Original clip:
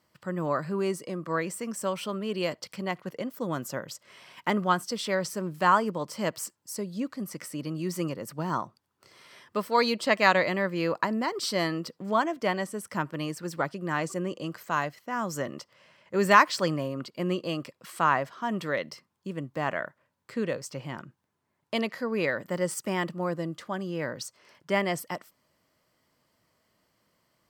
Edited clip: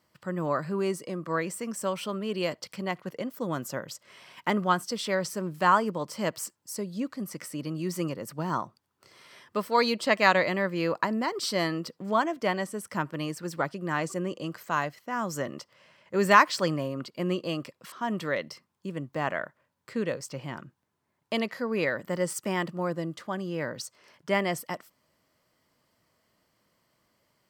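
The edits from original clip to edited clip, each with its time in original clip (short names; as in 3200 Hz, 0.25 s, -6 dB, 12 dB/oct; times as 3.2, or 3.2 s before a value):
17.92–18.33 cut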